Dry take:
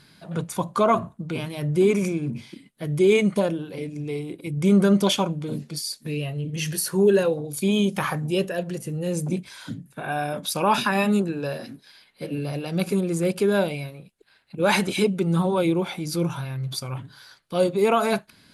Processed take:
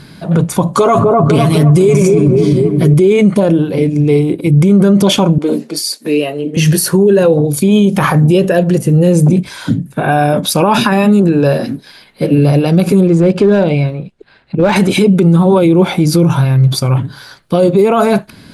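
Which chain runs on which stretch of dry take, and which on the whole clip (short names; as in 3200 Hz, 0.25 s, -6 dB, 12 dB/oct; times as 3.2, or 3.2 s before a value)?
0.73–2.94 bell 7400 Hz +10 dB 1.4 oct + comb 7.1 ms, depth 68% + dark delay 0.251 s, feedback 53%, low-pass 970 Hz, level -4.5 dB
5.38–6.57 HPF 270 Hz 24 dB/oct + notch 3400 Hz, Q 24 + mismatched tape noise reduction decoder only
13.07–14.76 air absorption 100 m + compressor 2.5:1, threshold -27 dBFS + overloaded stage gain 23 dB
whole clip: tilt shelf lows +4.5 dB, about 900 Hz; maximiser +17.5 dB; gain -1 dB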